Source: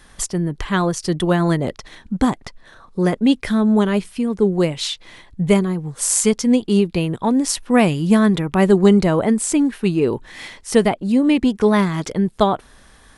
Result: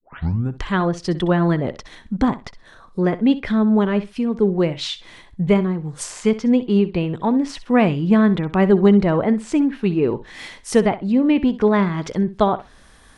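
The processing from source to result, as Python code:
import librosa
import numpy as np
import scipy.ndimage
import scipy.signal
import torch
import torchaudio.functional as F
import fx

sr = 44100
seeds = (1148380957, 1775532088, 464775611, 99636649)

y = fx.tape_start_head(x, sr, length_s=0.58)
y = fx.env_lowpass_down(y, sr, base_hz=2700.0, full_db=-15.5)
y = fx.echo_feedback(y, sr, ms=64, feedback_pct=15, wet_db=-15.5)
y = y * librosa.db_to_amplitude(-1.0)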